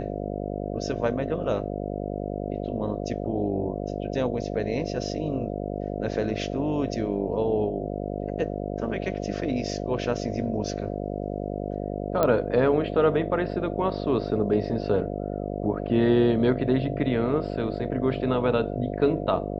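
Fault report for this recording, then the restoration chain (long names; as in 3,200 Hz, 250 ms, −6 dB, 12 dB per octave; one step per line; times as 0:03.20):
mains buzz 50 Hz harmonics 14 −31 dBFS
0:12.23: click −10 dBFS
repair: click removal
hum removal 50 Hz, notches 14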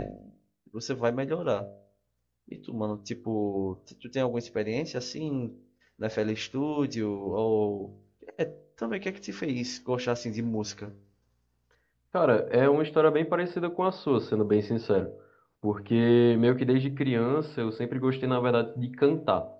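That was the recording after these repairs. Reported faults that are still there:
none of them is left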